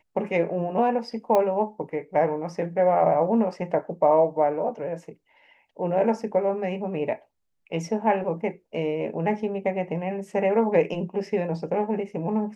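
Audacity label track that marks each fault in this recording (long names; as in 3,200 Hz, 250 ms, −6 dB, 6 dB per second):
1.350000	1.350000	click −11 dBFS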